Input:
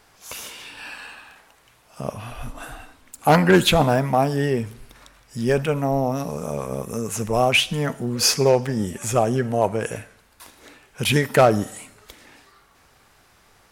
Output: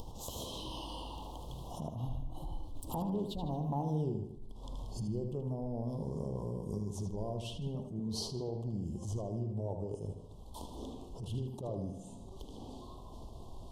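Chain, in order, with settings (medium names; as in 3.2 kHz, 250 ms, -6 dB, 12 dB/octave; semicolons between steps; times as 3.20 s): Doppler pass-by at 4.04 s, 34 m/s, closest 2 m; tilt EQ -3 dB/octave; upward compressor, threshold -36 dBFS; elliptic band-stop 1–3.2 kHz, stop band 40 dB; compression 8:1, threshold -49 dBFS, peak gain reduction 32.5 dB; filtered feedback delay 77 ms, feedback 55%, low-pass 4.6 kHz, level -7 dB; attacks held to a fixed rise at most 120 dB/s; trim +14.5 dB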